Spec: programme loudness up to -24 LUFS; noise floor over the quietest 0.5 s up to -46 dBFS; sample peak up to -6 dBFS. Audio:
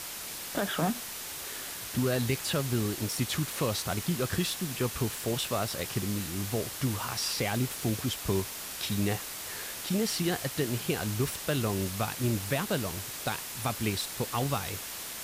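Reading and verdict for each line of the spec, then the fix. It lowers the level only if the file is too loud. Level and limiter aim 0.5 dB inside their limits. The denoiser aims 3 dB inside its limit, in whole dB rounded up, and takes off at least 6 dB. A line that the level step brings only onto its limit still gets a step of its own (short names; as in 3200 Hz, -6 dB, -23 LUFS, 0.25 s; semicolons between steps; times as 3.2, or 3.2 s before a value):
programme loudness -31.0 LUFS: OK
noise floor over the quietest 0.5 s -40 dBFS: fail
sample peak -16.5 dBFS: OK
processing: denoiser 9 dB, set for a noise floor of -40 dBFS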